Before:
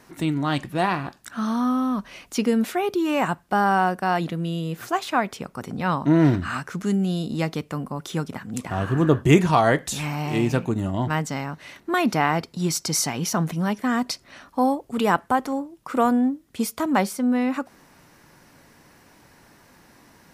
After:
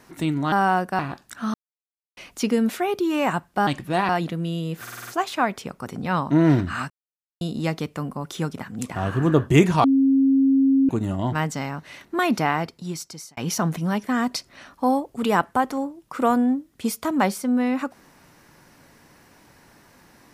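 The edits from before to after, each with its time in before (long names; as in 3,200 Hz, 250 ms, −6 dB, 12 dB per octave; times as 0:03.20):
0:00.52–0:00.94: swap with 0:03.62–0:04.09
0:01.49–0:02.12: silence
0:04.82: stutter 0.05 s, 6 plays
0:06.65–0:07.16: silence
0:09.59–0:10.64: beep over 270 Hz −14 dBFS
0:12.10–0:13.12: fade out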